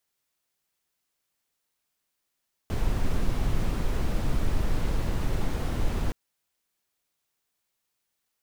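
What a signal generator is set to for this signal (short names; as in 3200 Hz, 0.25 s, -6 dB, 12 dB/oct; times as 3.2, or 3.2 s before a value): noise brown, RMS -24 dBFS 3.42 s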